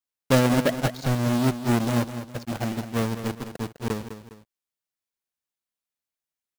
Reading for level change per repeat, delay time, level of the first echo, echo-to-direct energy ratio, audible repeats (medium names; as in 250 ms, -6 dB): -8.0 dB, 204 ms, -11.0 dB, -10.5 dB, 2